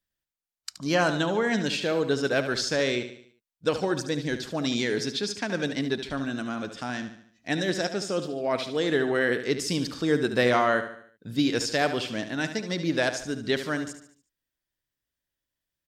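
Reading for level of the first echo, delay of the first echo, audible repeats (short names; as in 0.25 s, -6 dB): -10.5 dB, 73 ms, 4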